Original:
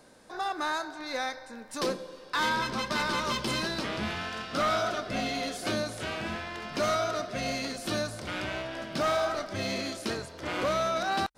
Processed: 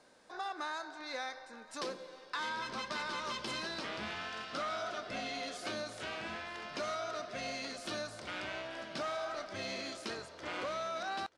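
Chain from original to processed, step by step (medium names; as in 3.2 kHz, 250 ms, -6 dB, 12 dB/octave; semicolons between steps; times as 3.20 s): Bessel low-pass 7.5 kHz, order 4; bass shelf 280 Hz -10.5 dB; compression 4:1, threshold -31 dBFS, peak gain reduction 5.5 dB; delay 930 ms -20.5 dB; trim -4.5 dB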